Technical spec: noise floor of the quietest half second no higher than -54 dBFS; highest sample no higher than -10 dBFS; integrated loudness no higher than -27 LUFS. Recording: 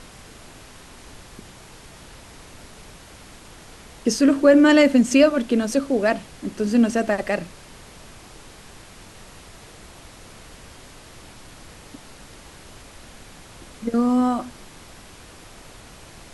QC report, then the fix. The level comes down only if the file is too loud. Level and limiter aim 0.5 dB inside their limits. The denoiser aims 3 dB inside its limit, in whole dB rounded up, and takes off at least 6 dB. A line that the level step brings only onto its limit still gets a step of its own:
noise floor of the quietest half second -44 dBFS: fail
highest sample -5.0 dBFS: fail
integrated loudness -19.0 LUFS: fail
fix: denoiser 6 dB, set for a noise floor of -44 dBFS; gain -8.5 dB

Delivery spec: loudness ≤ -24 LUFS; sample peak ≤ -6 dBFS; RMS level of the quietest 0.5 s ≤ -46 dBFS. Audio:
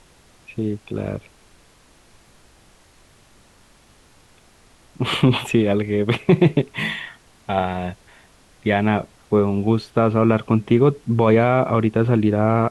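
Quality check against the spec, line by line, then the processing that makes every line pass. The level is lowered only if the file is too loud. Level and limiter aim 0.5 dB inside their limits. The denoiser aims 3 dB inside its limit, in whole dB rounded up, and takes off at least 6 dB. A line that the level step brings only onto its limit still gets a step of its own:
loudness -19.5 LUFS: fail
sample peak -4.5 dBFS: fail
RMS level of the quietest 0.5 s -53 dBFS: OK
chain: gain -5 dB

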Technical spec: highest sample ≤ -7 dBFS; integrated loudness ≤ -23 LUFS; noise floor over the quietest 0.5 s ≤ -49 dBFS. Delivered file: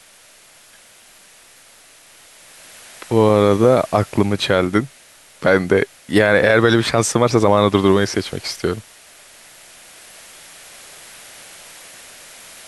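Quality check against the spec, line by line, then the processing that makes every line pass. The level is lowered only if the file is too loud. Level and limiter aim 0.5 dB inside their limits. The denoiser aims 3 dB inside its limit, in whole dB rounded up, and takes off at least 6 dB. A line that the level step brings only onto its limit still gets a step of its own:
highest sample -1.5 dBFS: fail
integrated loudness -16.5 LUFS: fail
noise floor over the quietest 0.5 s -48 dBFS: fail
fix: gain -7 dB

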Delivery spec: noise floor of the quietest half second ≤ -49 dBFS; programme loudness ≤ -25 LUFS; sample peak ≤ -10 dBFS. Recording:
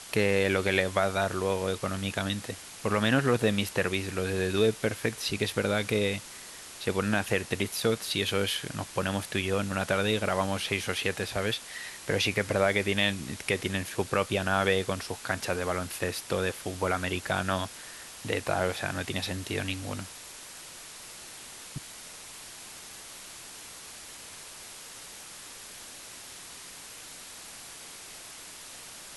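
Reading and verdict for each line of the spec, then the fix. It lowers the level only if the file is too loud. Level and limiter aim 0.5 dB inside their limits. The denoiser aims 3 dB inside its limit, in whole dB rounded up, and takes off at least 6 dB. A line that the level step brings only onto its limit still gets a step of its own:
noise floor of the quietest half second -45 dBFS: fail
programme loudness -29.0 LUFS: OK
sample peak -9.0 dBFS: fail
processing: denoiser 7 dB, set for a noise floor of -45 dBFS; limiter -10.5 dBFS

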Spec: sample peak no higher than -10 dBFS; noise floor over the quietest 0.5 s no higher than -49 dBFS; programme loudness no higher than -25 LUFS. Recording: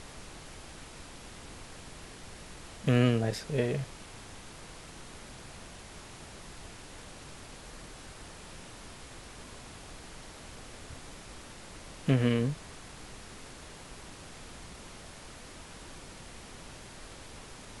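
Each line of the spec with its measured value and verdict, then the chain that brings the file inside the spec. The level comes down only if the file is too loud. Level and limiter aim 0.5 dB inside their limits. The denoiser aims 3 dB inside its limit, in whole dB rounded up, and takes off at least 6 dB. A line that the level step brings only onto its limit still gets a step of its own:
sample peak -12.0 dBFS: OK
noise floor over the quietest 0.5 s -48 dBFS: fail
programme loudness -38.0 LUFS: OK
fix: denoiser 6 dB, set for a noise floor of -48 dBFS

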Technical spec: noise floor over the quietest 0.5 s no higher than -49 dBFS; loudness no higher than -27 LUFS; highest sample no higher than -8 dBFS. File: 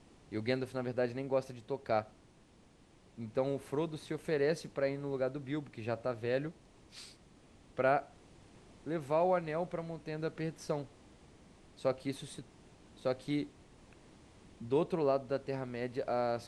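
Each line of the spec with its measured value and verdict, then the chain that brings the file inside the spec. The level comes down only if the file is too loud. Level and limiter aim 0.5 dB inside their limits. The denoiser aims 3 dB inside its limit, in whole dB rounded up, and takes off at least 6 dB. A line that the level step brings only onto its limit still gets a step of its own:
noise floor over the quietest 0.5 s -63 dBFS: OK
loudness -36.0 LUFS: OK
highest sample -17.5 dBFS: OK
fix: none

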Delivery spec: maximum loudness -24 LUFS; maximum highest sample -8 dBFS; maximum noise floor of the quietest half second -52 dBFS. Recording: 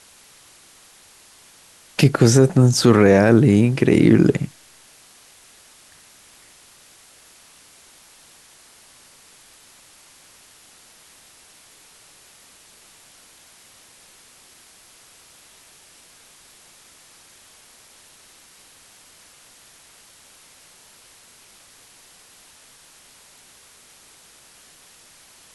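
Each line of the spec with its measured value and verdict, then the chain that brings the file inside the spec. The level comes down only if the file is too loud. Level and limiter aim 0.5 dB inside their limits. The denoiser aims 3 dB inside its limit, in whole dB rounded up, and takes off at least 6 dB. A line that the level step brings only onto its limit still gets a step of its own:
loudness -15.0 LUFS: fail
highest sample -2.5 dBFS: fail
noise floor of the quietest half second -50 dBFS: fail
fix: gain -9.5 dB

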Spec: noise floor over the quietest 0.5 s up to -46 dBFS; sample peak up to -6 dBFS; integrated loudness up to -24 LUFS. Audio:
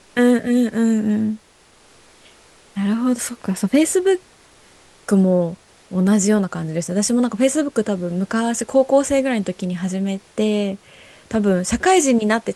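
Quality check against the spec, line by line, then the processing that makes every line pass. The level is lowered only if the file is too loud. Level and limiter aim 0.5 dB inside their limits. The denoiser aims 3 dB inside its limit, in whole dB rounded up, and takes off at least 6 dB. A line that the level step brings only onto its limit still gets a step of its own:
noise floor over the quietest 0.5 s -52 dBFS: OK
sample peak -4.5 dBFS: fail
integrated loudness -19.0 LUFS: fail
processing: gain -5.5 dB

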